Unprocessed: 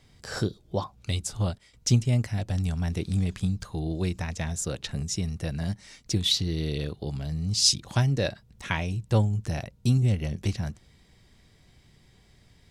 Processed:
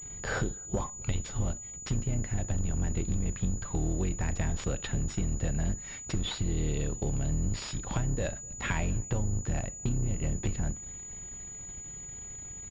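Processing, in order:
sub-octave generator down 2 octaves, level +1 dB
brickwall limiter −15.5 dBFS, peak gain reduction 9 dB
downward compressor 6 to 1, threshold −34 dBFS, peak gain reduction 14.5 dB
leveller curve on the samples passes 2
slap from a distant wall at 43 metres, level −28 dB
four-comb reverb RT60 0.31 s, combs from 26 ms, DRR 17.5 dB
switching amplifier with a slow clock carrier 6,900 Hz

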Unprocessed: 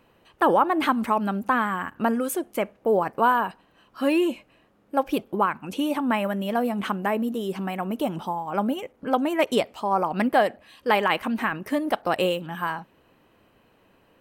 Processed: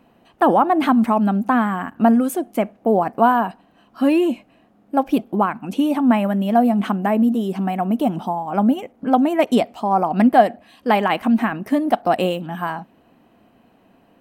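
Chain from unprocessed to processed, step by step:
hollow resonant body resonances 230/700 Hz, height 11 dB, ringing for 25 ms

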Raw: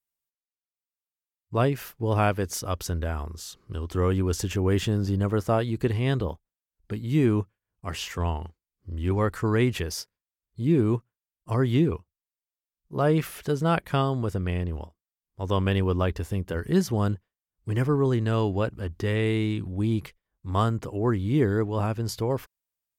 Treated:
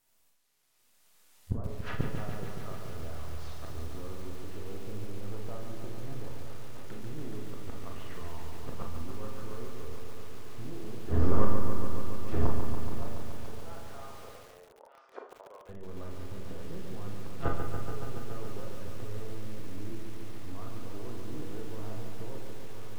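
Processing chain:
gain on one half-wave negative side −12 dB
camcorder AGC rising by 12 dB per second
dynamic equaliser 1,200 Hz, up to +4 dB, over −46 dBFS, Q 4.9
feedback echo with a long and a short gap by turns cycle 1,260 ms, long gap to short 3 to 1, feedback 77%, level −20.5 dB
treble cut that deepens with the level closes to 910 Hz, closed at −25 dBFS
downward compressor 16 to 1, threshold −26 dBFS, peak gain reduction 8.5 dB
gate with flip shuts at −33 dBFS, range −31 dB
treble cut that deepens with the level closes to 1,400 Hz, closed at −50 dBFS
0:12.99–0:15.69: high-pass filter 490 Hz 24 dB per octave
four-comb reverb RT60 0.36 s, combs from 26 ms, DRR 2 dB
feedback echo at a low word length 142 ms, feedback 80%, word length 11 bits, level −6 dB
level +17.5 dB

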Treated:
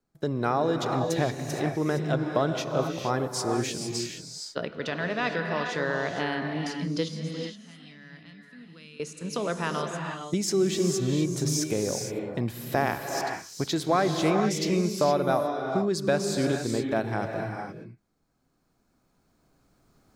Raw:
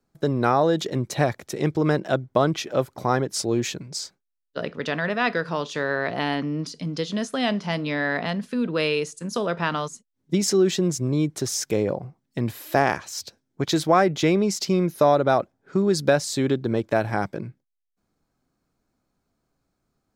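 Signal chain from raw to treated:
camcorder AGC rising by 6 dB per second
0:07.08–0:09.00: guitar amp tone stack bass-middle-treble 6-0-2
reverb whose tail is shaped and stops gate 490 ms rising, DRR 3 dB
level −6 dB

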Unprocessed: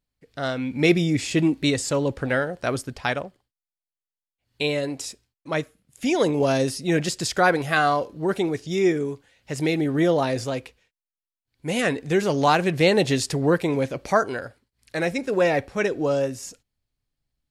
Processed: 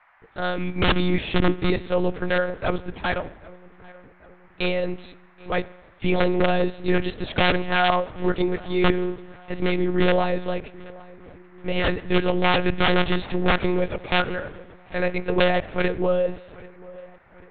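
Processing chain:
wrap-around overflow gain 12.5 dB
on a send: feedback echo with a low-pass in the loop 787 ms, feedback 54%, low-pass 2,400 Hz, level −21 dB
on the sum: spring reverb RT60 1.2 s, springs 42 ms, DRR 17.5 dB
one-pitch LPC vocoder at 8 kHz 180 Hz
noise in a band 660–2,100 Hz −60 dBFS
level +1.5 dB

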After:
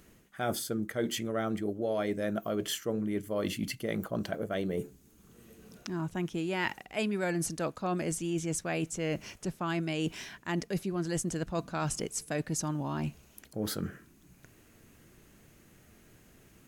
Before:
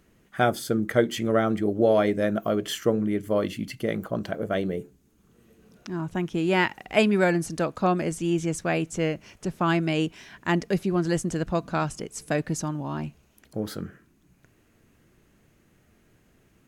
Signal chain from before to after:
high-shelf EQ 4,700 Hz +7 dB
reversed playback
downward compressor 5 to 1, threshold −32 dBFS, peak gain reduction 16 dB
reversed playback
level +2 dB

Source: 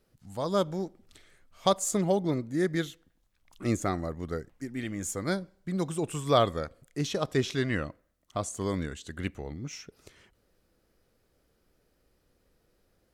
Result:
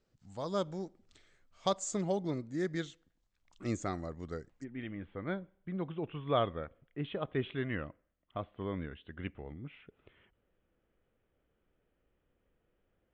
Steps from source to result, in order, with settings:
Butterworth low-pass 8,100 Hz 72 dB per octave, from 0:04.63 3,400 Hz
level −7 dB

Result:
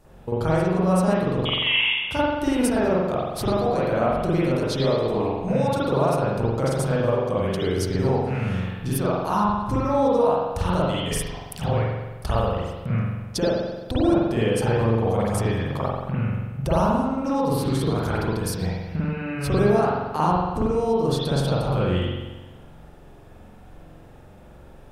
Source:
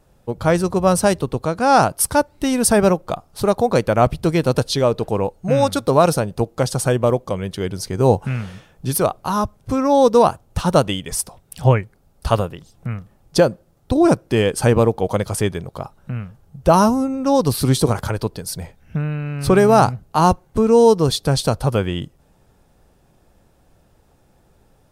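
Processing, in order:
downward compressor 6 to 1, threshold −28 dBFS, peak gain reduction 18.5 dB
0:01.45–0:02.11: voice inversion scrambler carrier 3,500 Hz
convolution reverb RT60 1.2 s, pre-delay 44 ms, DRR −9 dB

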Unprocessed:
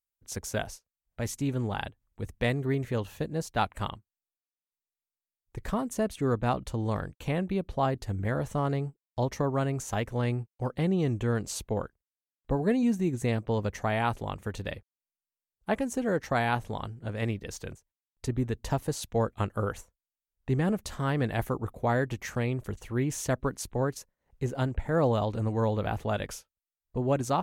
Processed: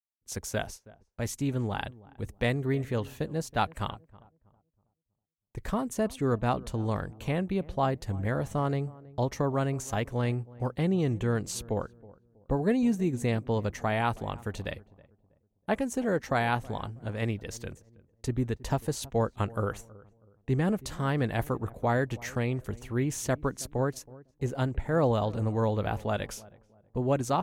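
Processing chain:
noise gate with hold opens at −46 dBFS
feedback echo with a low-pass in the loop 322 ms, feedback 35%, low-pass 920 Hz, level −20 dB

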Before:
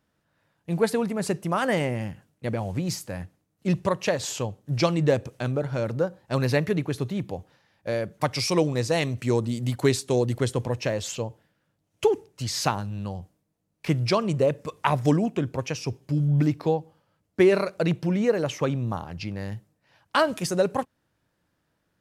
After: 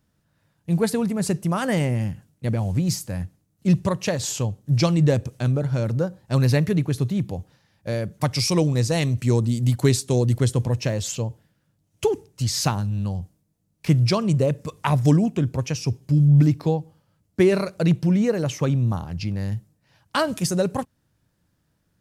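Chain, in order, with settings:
bass and treble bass +10 dB, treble +7 dB
level −1.5 dB

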